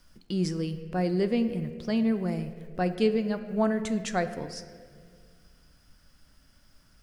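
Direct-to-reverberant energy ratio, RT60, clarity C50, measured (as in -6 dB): 9.5 dB, 1.9 s, 11.0 dB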